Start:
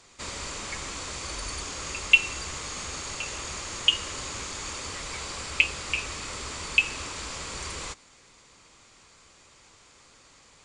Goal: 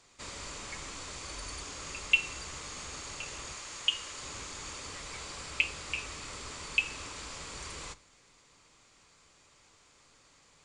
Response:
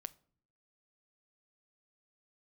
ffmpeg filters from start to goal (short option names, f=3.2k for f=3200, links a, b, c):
-filter_complex "[0:a]asettb=1/sr,asplit=3[a][b][c];[a]atrim=end=3.534[d];[b]atrim=start=3.53:end=4.23,asetpts=PTS-STARTPTS,afade=t=in:d=0.004:c=qsin,afade=t=out:st=0.696:d=0.004:c=qsin,lowshelf=f=470:g=-8[e];[c]atrim=start=4.226[f];[d][e]acrossfade=d=0.004:c1=hsin:c2=qsin[g];[g][f]acrossfade=d=0.004:c1=qsin:c2=hsin[h];[1:a]atrim=start_sample=2205[i];[h][i]afir=irnorm=-1:irlink=0,volume=-2.5dB"